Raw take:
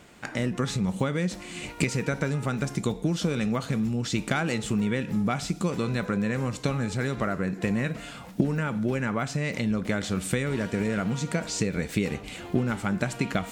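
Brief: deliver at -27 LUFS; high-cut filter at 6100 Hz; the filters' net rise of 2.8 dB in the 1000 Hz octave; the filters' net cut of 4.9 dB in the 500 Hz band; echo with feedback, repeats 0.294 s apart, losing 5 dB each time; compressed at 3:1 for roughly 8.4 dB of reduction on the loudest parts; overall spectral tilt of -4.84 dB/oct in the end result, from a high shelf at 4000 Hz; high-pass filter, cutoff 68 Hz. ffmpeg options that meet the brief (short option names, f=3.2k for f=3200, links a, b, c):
-af "highpass=68,lowpass=6.1k,equalizer=f=500:t=o:g=-7.5,equalizer=f=1k:t=o:g=5.5,highshelf=f=4k:g=6,acompressor=threshold=-30dB:ratio=3,aecho=1:1:294|588|882|1176|1470|1764|2058:0.562|0.315|0.176|0.0988|0.0553|0.031|0.0173,volume=5dB"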